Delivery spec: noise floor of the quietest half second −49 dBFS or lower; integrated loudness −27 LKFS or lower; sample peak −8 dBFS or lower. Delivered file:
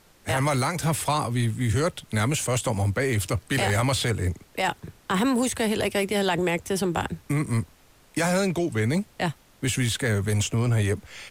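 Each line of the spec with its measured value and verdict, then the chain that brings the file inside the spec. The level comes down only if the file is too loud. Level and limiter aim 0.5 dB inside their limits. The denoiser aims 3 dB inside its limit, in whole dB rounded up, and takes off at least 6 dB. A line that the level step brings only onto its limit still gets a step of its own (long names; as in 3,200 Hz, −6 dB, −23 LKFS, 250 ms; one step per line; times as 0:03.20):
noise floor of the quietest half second −55 dBFS: in spec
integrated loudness −25.5 LKFS: out of spec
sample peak −14.0 dBFS: in spec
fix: level −2 dB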